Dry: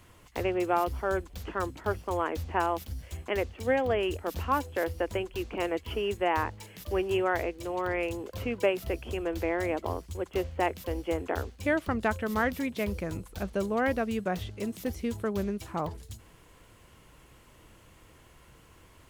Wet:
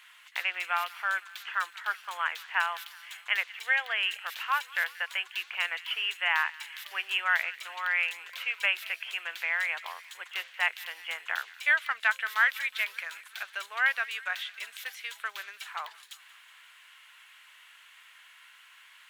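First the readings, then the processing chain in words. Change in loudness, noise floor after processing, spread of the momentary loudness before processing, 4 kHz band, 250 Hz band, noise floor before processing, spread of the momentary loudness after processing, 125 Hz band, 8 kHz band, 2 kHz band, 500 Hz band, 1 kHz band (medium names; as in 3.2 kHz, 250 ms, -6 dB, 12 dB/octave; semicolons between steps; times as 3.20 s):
+1.0 dB, -56 dBFS, 8 LU, +9.0 dB, under -35 dB, -57 dBFS, 13 LU, under -40 dB, 0.0 dB, +9.0 dB, -20.5 dB, -2.5 dB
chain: high-pass 1 kHz 24 dB/octave; high-order bell 2.4 kHz +9.5 dB; on a send: feedback echo behind a high-pass 184 ms, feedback 67%, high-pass 1.5 kHz, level -18.5 dB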